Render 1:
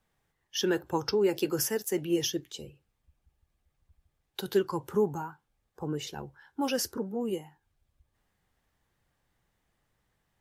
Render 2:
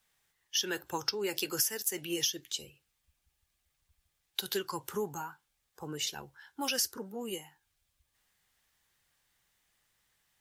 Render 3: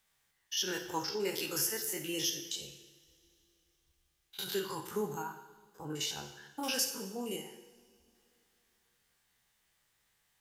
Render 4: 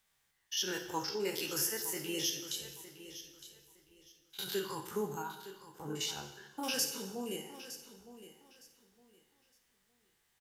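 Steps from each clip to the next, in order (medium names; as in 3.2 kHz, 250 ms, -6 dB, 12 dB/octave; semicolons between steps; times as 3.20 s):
tilt shelf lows -9 dB, about 1.3 kHz; compression 3:1, threshold -29 dBFS, peak gain reduction 8.5 dB
spectrogram pixelated in time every 50 ms; two-slope reverb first 0.88 s, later 3.3 s, from -20 dB, DRR 5 dB
feedback delay 912 ms, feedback 23%, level -14 dB; trim -1 dB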